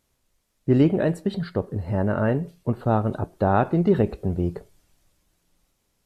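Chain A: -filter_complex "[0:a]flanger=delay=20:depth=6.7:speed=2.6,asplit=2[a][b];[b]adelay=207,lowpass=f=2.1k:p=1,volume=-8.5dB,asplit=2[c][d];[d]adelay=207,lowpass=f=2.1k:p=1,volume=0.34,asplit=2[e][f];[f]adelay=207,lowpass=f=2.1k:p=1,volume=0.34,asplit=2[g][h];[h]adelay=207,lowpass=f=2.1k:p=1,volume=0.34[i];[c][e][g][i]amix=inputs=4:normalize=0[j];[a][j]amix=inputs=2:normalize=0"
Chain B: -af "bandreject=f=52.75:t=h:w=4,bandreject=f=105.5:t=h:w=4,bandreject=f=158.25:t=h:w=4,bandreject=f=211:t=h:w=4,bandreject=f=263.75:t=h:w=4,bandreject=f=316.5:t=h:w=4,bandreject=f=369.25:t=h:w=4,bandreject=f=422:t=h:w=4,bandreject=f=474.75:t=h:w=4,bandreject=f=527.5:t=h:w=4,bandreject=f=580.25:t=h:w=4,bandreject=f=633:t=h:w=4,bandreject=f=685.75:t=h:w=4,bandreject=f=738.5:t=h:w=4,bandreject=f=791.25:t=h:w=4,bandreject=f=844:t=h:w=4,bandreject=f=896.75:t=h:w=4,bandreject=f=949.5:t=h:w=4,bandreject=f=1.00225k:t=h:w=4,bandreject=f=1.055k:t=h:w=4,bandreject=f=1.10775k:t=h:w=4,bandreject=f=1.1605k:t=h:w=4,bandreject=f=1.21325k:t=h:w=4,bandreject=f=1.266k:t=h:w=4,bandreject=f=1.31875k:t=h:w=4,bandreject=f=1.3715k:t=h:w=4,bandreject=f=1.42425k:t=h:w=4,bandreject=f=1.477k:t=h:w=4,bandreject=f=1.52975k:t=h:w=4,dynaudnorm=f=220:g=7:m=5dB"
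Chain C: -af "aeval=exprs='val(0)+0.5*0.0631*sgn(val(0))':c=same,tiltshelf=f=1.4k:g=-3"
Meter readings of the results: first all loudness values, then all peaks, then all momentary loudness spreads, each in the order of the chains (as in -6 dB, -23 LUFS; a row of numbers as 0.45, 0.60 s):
-26.0, -20.5, -24.5 LUFS; -9.5, -3.5, -7.0 dBFS; 8, 8, 8 LU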